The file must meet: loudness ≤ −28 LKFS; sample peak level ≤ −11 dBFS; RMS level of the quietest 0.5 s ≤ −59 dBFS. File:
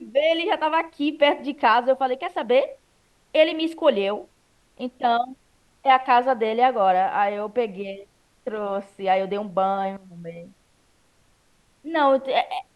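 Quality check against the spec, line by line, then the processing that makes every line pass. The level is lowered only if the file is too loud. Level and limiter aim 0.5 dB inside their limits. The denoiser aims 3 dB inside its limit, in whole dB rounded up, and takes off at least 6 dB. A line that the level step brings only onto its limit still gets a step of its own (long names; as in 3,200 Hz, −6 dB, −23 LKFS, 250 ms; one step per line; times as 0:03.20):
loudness −22.0 LKFS: out of spec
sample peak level −5.5 dBFS: out of spec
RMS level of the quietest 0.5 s −62 dBFS: in spec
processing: level −6.5 dB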